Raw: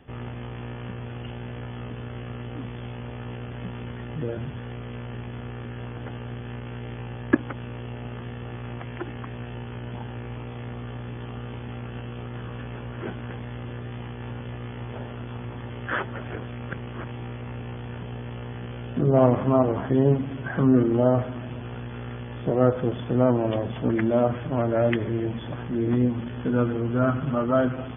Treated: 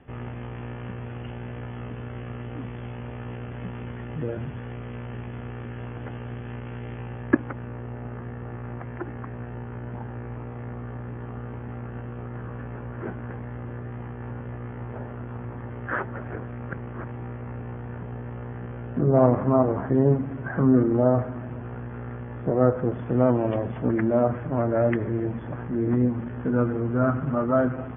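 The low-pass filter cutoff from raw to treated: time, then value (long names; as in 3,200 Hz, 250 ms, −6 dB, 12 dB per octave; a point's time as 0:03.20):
low-pass filter 24 dB per octave
0:06.92 2,700 Hz
0:07.78 1,900 Hz
0:22.89 1,900 Hz
0:23.32 2,600 Hz
0:24.00 2,000 Hz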